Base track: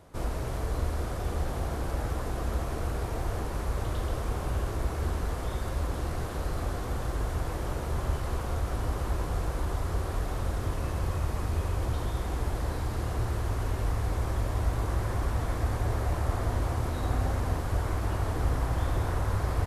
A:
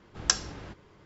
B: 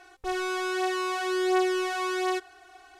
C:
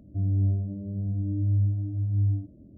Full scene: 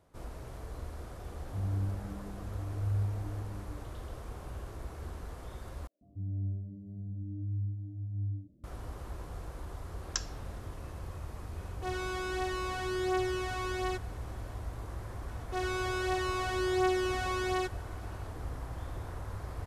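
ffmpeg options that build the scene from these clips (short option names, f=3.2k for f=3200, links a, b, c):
-filter_complex "[3:a]asplit=2[a][b];[2:a]asplit=2[c][d];[0:a]volume=-12dB[e];[a]asplit=2[f][g];[g]adelay=9.1,afreqshift=0.73[h];[f][h]amix=inputs=2:normalize=1[i];[b]acrossover=split=590[j][k];[j]adelay=140[l];[l][k]amix=inputs=2:normalize=0[m];[c]aeval=exprs='val(0)+0.00708*(sin(2*PI*60*n/s)+sin(2*PI*2*60*n/s)/2+sin(2*PI*3*60*n/s)/3+sin(2*PI*4*60*n/s)/4+sin(2*PI*5*60*n/s)/5)':c=same[n];[e]asplit=2[o][p];[o]atrim=end=5.874[q];[m]atrim=end=2.77,asetpts=PTS-STARTPTS,volume=-11dB[r];[p]atrim=start=8.636[s];[i]atrim=end=2.77,asetpts=PTS-STARTPTS,volume=-7.5dB,afade=t=in:d=0.004:c=hsin,afade=t=out:st=2.766:d=0.004:c=hsin,adelay=1380[t];[1:a]atrim=end=1.05,asetpts=PTS-STARTPTS,volume=-11dB,afade=t=in:d=0.004:c=hsin,afade=t=out:st=1.046:d=0.004:c=hsin,adelay=434826S[u];[n]atrim=end=2.99,asetpts=PTS-STARTPTS,volume=-7dB,afade=t=in:d=0.004:c=hsin,afade=t=out:st=2.986:d=0.004:c=hsin,adelay=11580[v];[d]atrim=end=2.99,asetpts=PTS-STARTPTS,volume=-4.5dB,afade=t=in:d=0.004:c=hsin,afade=t=out:st=2.986:d=0.004:c=hsin,adelay=15280[w];[q][r]acrossfade=d=0.004:c1=hsin:c2=hsin[x];[x][s]acrossfade=d=0.004:c1=hsin:c2=hsin[y];[y][t][u][v][w]amix=inputs=5:normalize=0"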